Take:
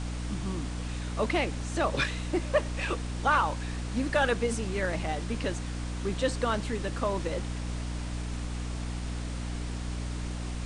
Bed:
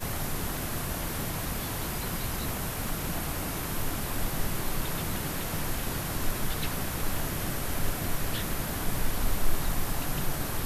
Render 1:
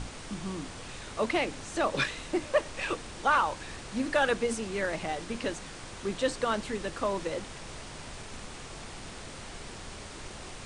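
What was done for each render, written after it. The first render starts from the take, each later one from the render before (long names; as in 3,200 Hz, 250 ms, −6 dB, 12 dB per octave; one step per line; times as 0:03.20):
mains-hum notches 60/120/180/240/300 Hz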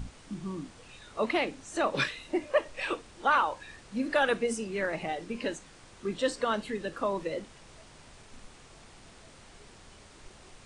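noise reduction from a noise print 10 dB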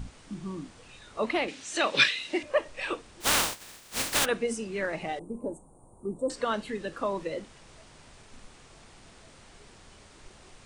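0:01.48–0:02.43: meter weighting curve D
0:03.20–0:04.24: compressing power law on the bin magnitudes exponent 0.17
0:05.19–0:06.30: elliptic band-stop filter 930–9,000 Hz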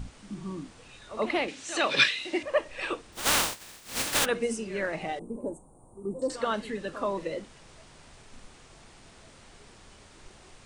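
backwards echo 81 ms −13 dB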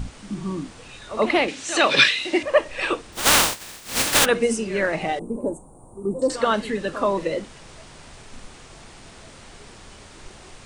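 level +8.5 dB
brickwall limiter −3 dBFS, peak gain reduction 3 dB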